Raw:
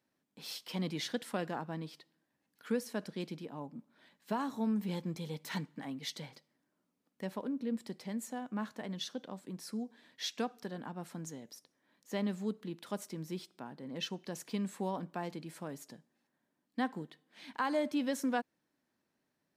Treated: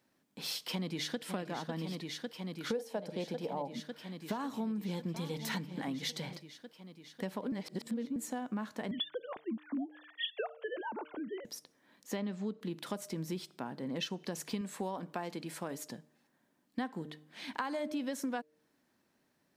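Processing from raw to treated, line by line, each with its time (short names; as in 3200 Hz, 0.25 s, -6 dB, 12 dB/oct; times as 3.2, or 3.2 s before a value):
0.63–1.21 echo throw 0.55 s, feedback 85%, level -9 dB
2.7–3.75 band shelf 650 Hz +11 dB 1.2 oct
4.32–6.22 echo 0.822 s -17.5 dB
7.52–8.16 reverse
8.91–11.45 sine-wave speech
12.16–12.61 LPF 5500 Hz
14.61–15.86 low shelf 190 Hz -9 dB
whole clip: de-hum 151.9 Hz, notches 4; compressor 6:1, threshold -41 dBFS; gain +7 dB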